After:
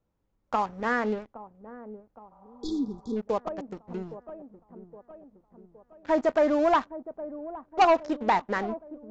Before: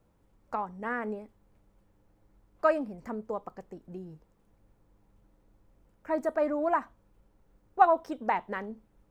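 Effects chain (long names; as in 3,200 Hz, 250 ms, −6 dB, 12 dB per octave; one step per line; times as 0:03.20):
leveller curve on the samples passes 3
downsampling to 16,000 Hz
on a send: delay with a low-pass on its return 816 ms, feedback 51%, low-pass 750 Hz, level −13.5 dB
on the sum: healed spectral selection 0:02.34–0:03.14, 480–3,300 Hz before
level −4.5 dB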